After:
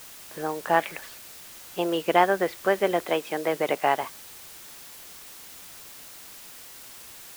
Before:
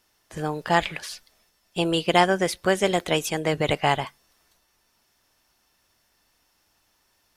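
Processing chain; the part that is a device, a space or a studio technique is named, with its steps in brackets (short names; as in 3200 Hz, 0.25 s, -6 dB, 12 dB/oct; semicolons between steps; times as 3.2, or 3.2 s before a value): wax cylinder (BPF 300–2000 Hz; wow and flutter; white noise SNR 16 dB); 3.06–4.03 HPF 150 Hz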